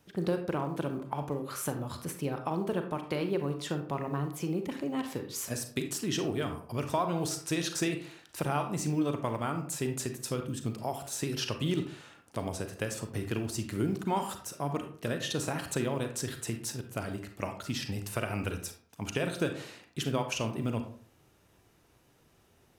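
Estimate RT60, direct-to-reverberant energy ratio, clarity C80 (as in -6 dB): 0.50 s, 6.0 dB, 13.0 dB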